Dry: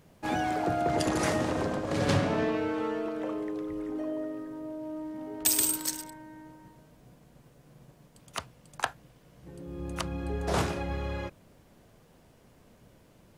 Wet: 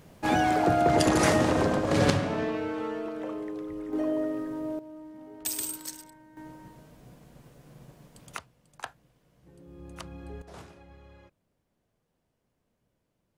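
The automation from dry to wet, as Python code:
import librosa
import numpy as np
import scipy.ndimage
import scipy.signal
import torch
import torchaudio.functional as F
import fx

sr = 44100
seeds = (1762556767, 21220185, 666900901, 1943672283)

y = fx.gain(x, sr, db=fx.steps((0.0, 5.5), (2.1, -1.5), (3.93, 5.5), (4.79, -7.0), (6.37, 4.0), (8.37, -8.5), (10.42, -19.0)))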